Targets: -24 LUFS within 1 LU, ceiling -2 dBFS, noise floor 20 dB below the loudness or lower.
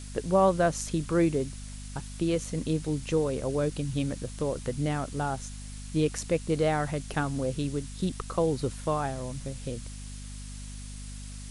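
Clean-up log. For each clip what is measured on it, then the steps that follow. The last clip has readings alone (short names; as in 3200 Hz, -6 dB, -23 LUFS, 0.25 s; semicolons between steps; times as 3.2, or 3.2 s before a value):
hum 50 Hz; harmonics up to 250 Hz; hum level -39 dBFS; noise floor -41 dBFS; noise floor target -50 dBFS; loudness -29.5 LUFS; peak -12.0 dBFS; loudness target -24.0 LUFS
-> notches 50/100/150/200/250 Hz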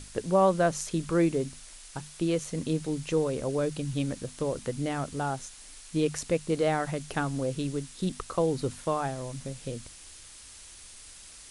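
hum none; noise floor -49 dBFS; noise floor target -50 dBFS
-> noise print and reduce 6 dB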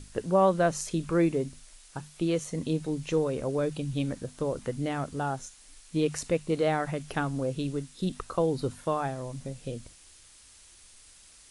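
noise floor -55 dBFS; loudness -30.0 LUFS; peak -12.5 dBFS; loudness target -24.0 LUFS
-> gain +6 dB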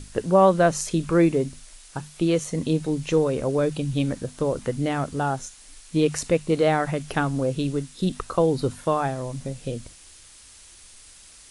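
loudness -24.0 LUFS; peak -6.5 dBFS; noise floor -49 dBFS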